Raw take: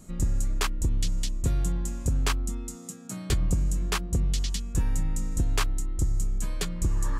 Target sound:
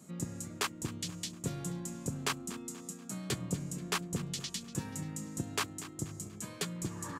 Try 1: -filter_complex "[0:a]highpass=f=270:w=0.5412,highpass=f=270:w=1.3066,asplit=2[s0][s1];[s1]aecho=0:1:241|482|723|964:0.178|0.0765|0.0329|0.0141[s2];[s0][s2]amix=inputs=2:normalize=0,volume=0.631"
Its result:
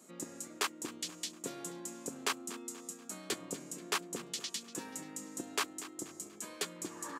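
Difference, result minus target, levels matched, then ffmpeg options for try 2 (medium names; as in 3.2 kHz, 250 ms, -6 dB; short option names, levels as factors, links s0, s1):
125 Hz band -16.0 dB
-filter_complex "[0:a]highpass=f=130:w=0.5412,highpass=f=130:w=1.3066,asplit=2[s0][s1];[s1]aecho=0:1:241|482|723|964:0.178|0.0765|0.0329|0.0141[s2];[s0][s2]amix=inputs=2:normalize=0,volume=0.631"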